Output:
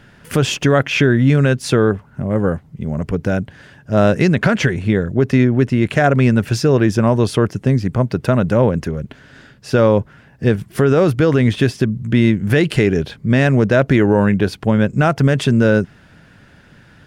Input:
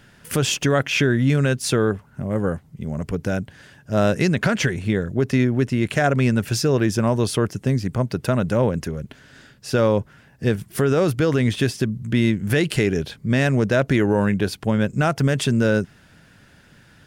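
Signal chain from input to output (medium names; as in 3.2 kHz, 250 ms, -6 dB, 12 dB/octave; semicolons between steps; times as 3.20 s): treble shelf 4.7 kHz -10.5 dB; trim +5.5 dB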